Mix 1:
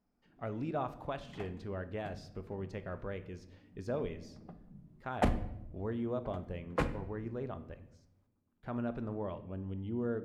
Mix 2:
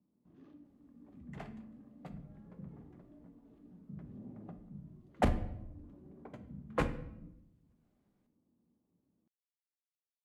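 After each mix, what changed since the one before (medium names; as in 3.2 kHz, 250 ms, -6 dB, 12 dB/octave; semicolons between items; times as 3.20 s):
speech: muted; first sound +5.5 dB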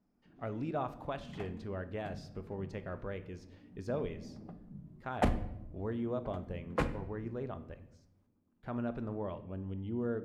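speech: unmuted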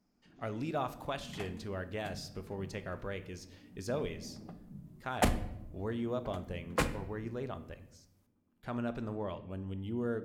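master: remove low-pass 1.4 kHz 6 dB/octave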